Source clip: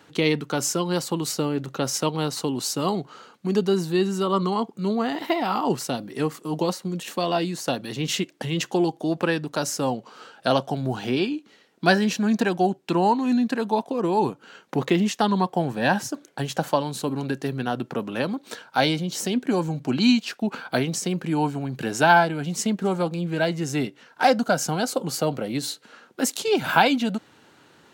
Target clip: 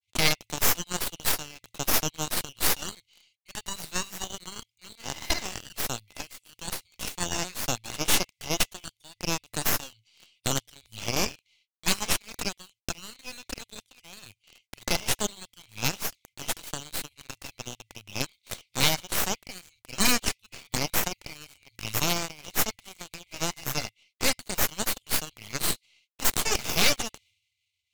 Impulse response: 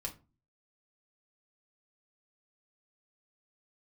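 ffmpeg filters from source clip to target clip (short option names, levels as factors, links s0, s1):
-filter_complex "[0:a]afftfilt=real='re*(1-between(b*sr/4096,110,2000))':imag='im*(1-between(b*sr/4096,110,2000))':win_size=4096:overlap=0.75,agate=range=0.00355:threshold=0.00112:ratio=16:detection=peak,equalizer=f=1300:w=0.84:g=5.5,asplit=2[s0][s1];[s1]acrusher=bits=6:mix=0:aa=0.000001,volume=0.668[s2];[s0][s2]amix=inputs=2:normalize=0,aeval=exprs='0.473*(cos(1*acos(clip(val(0)/0.473,-1,1)))-cos(1*PI/2))+0.075*(cos(3*acos(clip(val(0)/0.473,-1,1)))-cos(3*PI/2))+0.168*(cos(8*acos(clip(val(0)/0.473,-1,1)))-cos(8*PI/2))':c=same,volume=0.668"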